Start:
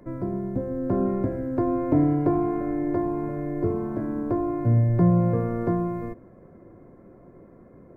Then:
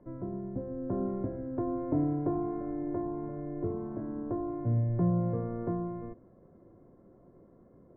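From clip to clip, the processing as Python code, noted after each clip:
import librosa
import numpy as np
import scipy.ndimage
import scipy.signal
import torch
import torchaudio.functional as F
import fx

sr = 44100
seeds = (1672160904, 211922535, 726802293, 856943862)

y = scipy.signal.sosfilt(scipy.signal.butter(2, 1300.0, 'lowpass', fs=sr, output='sos'), x)
y = F.gain(torch.from_numpy(y), -8.5).numpy()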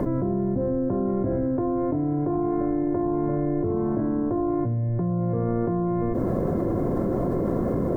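y = fx.env_flatten(x, sr, amount_pct=100)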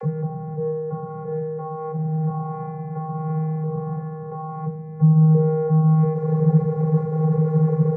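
y = fx.vocoder(x, sr, bands=32, carrier='square', carrier_hz=157.0)
y = F.gain(torch.from_numpy(y), 4.0).numpy()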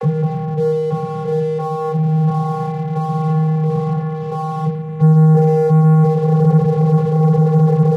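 y = fx.leveller(x, sr, passes=2)
y = F.gain(torch.from_numpy(y), 1.5).numpy()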